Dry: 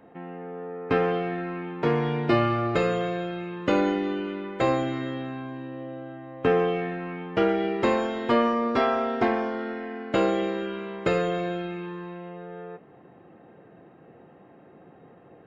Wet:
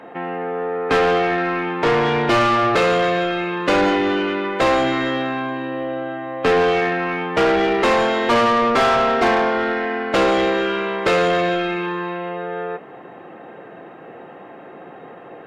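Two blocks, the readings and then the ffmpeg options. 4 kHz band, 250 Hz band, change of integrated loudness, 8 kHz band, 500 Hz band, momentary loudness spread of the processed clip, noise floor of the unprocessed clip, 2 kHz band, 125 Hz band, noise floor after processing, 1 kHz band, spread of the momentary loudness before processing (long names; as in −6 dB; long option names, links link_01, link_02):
+12.5 dB, +5.0 dB, +7.5 dB, can't be measured, +7.5 dB, 10 LU, −52 dBFS, +12.0 dB, +2.0 dB, −40 dBFS, +10.5 dB, 15 LU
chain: -filter_complex "[0:a]asplit=2[link_01][link_02];[link_02]highpass=frequency=720:poles=1,volume=24dB,asoftclip=type=tanh:threshold=-8.5dB[link_03];[link_01][link_03]amix=inputs=2:normalize=0,lowpass=frequency=4400:poles=1,volume=-6dB"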